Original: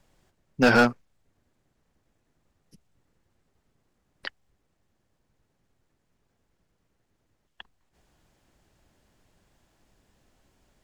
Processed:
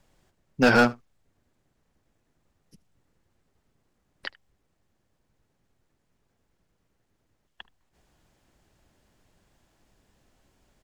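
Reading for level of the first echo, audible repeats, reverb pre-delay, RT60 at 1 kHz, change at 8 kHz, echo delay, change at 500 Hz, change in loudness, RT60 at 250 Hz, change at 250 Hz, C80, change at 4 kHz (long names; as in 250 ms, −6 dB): −23.5 dB, 1, no reverb audible, no reverb audible, 0.0 dB, 76 ms, 0.0 dB, 0.0 dB, no reverb audible, 0.0 dB, no reverb audible, 0.0 dB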